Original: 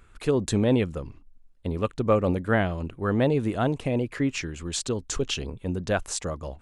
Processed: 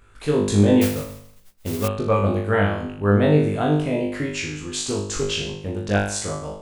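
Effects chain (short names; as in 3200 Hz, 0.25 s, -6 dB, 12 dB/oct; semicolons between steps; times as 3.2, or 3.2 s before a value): flutter echo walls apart 3.4 m, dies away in 0.62 s; 0.81–1.88 modulation noise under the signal 11 dB; 4.53–5.88 Doppler distortion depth 0.17 ms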